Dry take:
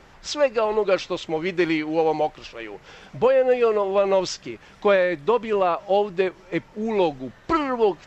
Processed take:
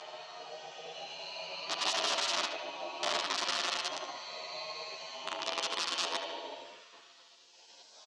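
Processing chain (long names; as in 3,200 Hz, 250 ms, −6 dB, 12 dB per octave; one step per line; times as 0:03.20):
extreme stretch with random phases 16×, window 0.05 s, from 0:01.87
spectral tilt +3 dB per octave
in parallel at −1 dB: downward compressor 6 to 1, threshold −30 dBFS, peak gain reduction 14.5 dB
on the sum: wrap-around overflow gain 12 dB
gate on every frequency bin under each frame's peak −15 dB weak
loudspeaker in its box 470–6,100 Hz, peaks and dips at 650 Hz +5 dB, 1,600 Hz −7 dB, 2,200 Hz −9 dB
on a send: feedback echo with a band-pass in the loop 74 ms, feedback 69%, band-pass 2,000 Hz, level −6.5 dB
on the sum: barber-pole flanger 10.9 ms +0.26 Hz
level −2 dB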